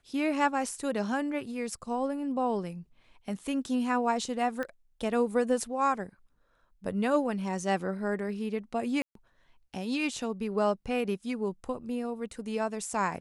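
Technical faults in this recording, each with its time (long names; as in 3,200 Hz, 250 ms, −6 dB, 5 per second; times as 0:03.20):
0:04.63: click −22 dBFS
0:09.02–0:09.15: drop-out 133 ms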